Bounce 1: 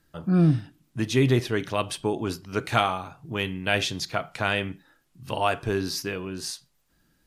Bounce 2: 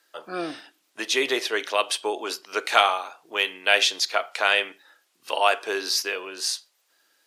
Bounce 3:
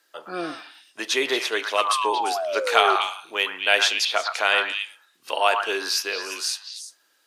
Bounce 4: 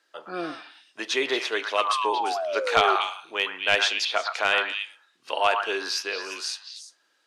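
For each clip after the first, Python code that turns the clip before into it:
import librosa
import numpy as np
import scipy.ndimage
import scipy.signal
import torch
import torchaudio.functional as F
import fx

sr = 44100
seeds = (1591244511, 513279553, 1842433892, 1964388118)

y1 = scipy.signal.sosfilt(scipy.signal.butter(4, 430.0, 'highpass', fs=sr, output='sos'), x)
y1 = fx.peak_eq(y1, sr, hz=4100.0, db=5.0, octaves=2.4)
y1 = y1 * librosa.db_to_amplitude(3.0)
y2 = fx.spec_paint(y1, sr, seeds[0], shape='fall', start_s=1.77, length_s=1.19, low_hz=370.0, high_hz=1300.0, level_db=-27.0)
y2 = fx.echo_stepped(y2, sr, ms=115, hz=1200.0, octaves=1.4, feedback_pct=70, wet_db=-2.0)
y3 = np.minimum(y2, 2.0 * 10.0 ** (-9.5 / 20.0) - y2)
y3 = fx.air_absorb(y3, sr, metres=61.0)
y3 = y3 * librosa.db_to_amplitude(-1.5)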